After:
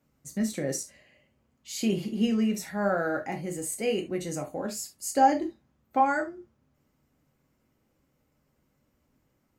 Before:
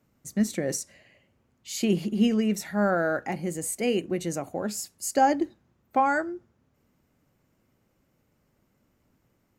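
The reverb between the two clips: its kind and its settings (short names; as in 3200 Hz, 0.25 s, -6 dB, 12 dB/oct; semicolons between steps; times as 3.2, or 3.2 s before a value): non-linear reverb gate 0.1 s falling, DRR 3.5 dB; gain -4 dB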